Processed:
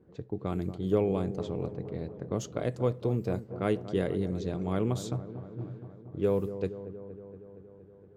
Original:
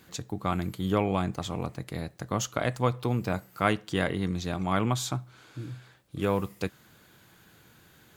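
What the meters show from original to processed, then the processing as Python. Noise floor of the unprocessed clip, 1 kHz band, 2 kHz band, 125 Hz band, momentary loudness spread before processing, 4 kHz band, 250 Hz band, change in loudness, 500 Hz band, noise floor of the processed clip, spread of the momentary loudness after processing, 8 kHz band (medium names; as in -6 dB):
-58 dBFS, -10.0 dB, -12.0 dB, -2.0 dB, 12 LU, -11.0 dB, -1.5 dB, -2.0 dB, +1.5 dB, -54 dBFS, 15 LU, -10.5 dB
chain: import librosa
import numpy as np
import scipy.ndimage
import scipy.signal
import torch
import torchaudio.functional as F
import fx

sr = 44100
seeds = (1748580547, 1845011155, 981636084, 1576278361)

y = fx.env_lowpass(x, sr, base_hz=960.0, full_db=-24.0)
y = fx.curve_eq(y, sr, hz=(290.0, 420.0, 740.0, 1200.0, 2700.0, 4800.0), db=(0, 7, -6, -10, -9, -7))
y = fx.echo_wet_lowpass(y, sr, ms=234, feedback_pct=71, hz=1100.0, wet_db=-12)
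y = y * librosa.db_to_amplitude(-2.5)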